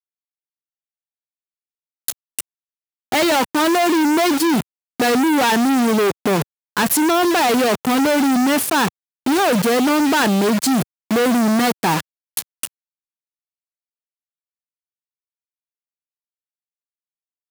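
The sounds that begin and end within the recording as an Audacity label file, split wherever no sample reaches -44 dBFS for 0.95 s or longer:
2.080000	12.670000	sound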